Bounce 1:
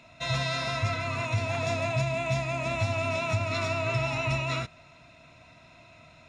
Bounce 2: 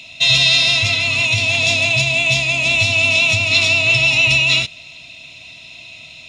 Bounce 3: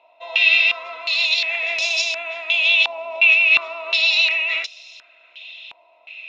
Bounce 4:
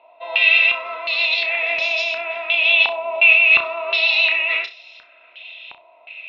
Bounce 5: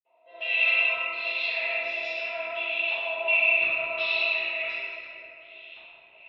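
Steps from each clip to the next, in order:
resonant high shelf 2100 Hz +12.5 dB, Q 3; gain +5 dB
inverse Chebyshev high-pass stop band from 170 Hz, stop band 50 dB; stepped low-pass 2.8 Hz 900–5500 Hz; gain -7.5 dB
air absorption 330 m; on a send: flutter echo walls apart 5.6 m, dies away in 0.24 s; on the sum: gain +5.5 dB
rotary speaker horn 1.2 Hz; reverb RT60 3.1 s, pre-delay 46 ms; gain -4 dB

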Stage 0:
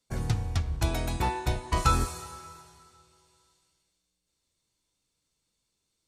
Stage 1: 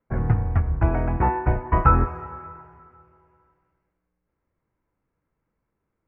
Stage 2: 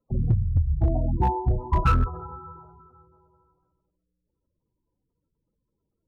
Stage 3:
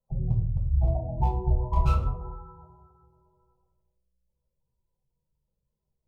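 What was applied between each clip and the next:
inverse Chebyshev low-pass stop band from 3600 Hz, stop band 40 dB; gain +7.5 dB
high shelf 2200 Hz -11.5 dB; spectral gate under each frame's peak -15 dB strong; overloaded stage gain 14 dB
fixed phaser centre 680 Hz, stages 4; reverb RT60 0.55 s, pre-delay 5 ms, DRR -1 dB; gain -6.5 dB

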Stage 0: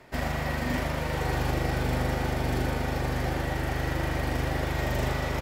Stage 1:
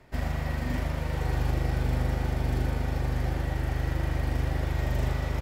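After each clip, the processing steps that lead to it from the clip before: low shelf 140 Hz +11.5 dB; gain -6 dB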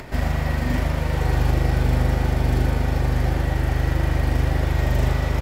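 upward compressor, threshold -35 dBFS; gain +7.5 dB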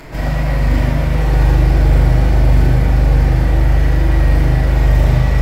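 reverb RT60 1.2 s, pre-delay 6 ms, DRR -9 dB; gain -5 dB

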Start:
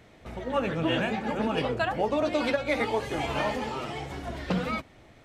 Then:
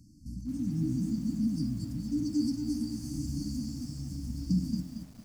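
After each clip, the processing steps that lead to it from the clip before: FFT band-reject 320–4400 Hz; lo-fi delay 0.228 s, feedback 35%, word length 9-bit, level -7.5 dB; gain +1.5 dB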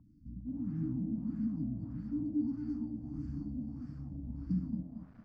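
LFO low-pass sine 1.6 Hz 610–1600 Hz; gain -5.5 dB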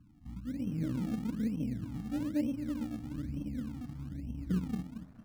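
self-modulated delay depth 0.33 ms; in parallel at -8.5 dB: decimation with a swept rate 30×, swing 100% 1.1 Hz; on the sum: gain -1 dB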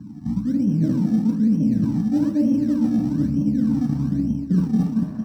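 reverb RT60 0.75 s, pre-delay 3 ms, DRR 1.5 dB; reverse; compressor 5:1, threshold -26 dBFS, peak gain reduction 14 dB; reverse; gain +8.5 dB

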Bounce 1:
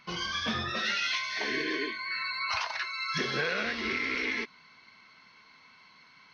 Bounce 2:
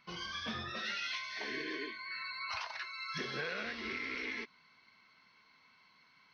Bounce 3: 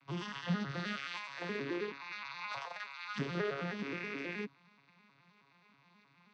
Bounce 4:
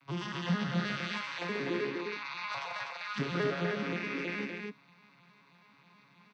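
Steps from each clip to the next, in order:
notch 6900 Hz, Q 5.3; gain -8.5 dB
arpeggiated vocoder major triad, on C#3, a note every 0.106 s; gain +2 dB
loudspeakers at several distances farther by 48 m -10 dB, 85 m -4 dB; gain +3 dB

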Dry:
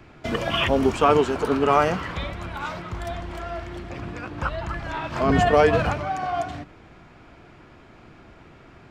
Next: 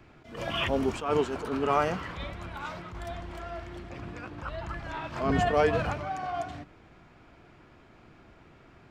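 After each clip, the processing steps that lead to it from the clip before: attack slew limiter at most 110 dB/s; gain -6.5 dB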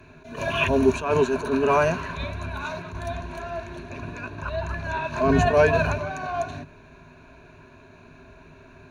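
ripple EQ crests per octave 1.5, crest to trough 14 dB; gain +4 dB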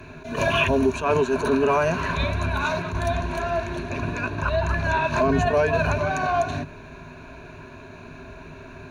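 compressor 6:1, threshold -25 dBFS, peak gain reduction 11.5 dB; gain +7.5 dB

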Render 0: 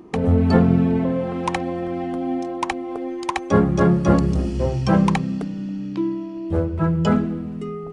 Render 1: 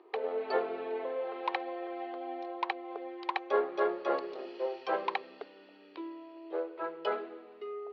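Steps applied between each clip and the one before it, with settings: Chebyshev band-pass 390–4300 Hz, order 4; gain -8 dB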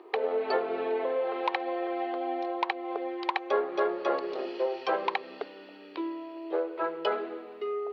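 compressor 2.5:1, threshold -34 dBFS, peak gain reduction 7.5 dB; gain +8 dB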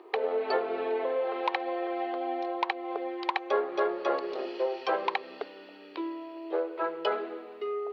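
tone controls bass -4 dB, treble +1 dB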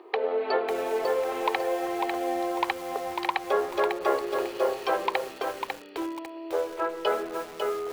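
lo-fi delay 0.548 s, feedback 35%, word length 7-bit, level -4.5 dB; gain +2 dB

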